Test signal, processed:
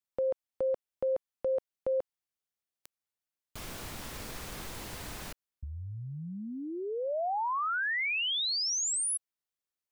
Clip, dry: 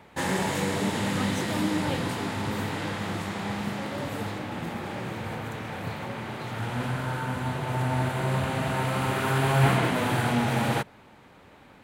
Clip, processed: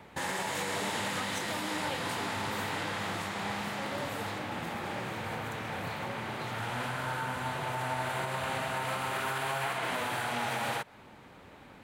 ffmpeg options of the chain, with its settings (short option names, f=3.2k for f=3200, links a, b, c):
-filter_complex "[0:a]acrossover=split=530[a][b];[a]acompressor=threshold=-39dB:ratio=6[c];[c][b]amix=inputs=2:normalize=0,alimiter=limit=-23.5dB:level=0:latency=1:release=153"